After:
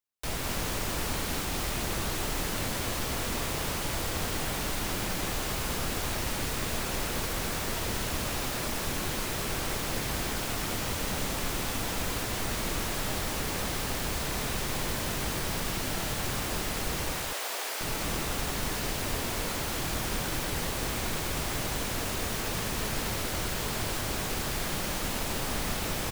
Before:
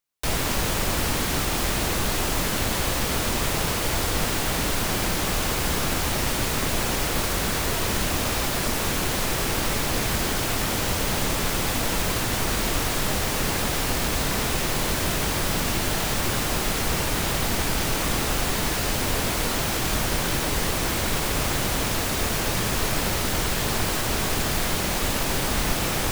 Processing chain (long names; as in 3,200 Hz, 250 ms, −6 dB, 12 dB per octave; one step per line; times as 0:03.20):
0:17.12–0:17.81: high-pass filter 450 Hz 24 dB per octave
on a send: single-tap delay 205 ms −4.5 dB
on the sum: level −8.5 dB